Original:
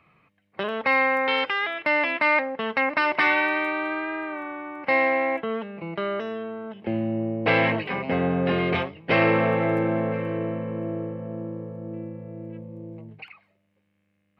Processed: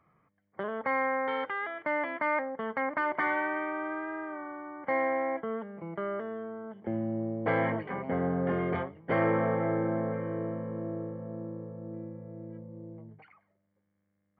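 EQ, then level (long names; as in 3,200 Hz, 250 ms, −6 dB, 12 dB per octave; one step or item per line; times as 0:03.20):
Savitzky-Golay smoothing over 41 samples
−6.0 dB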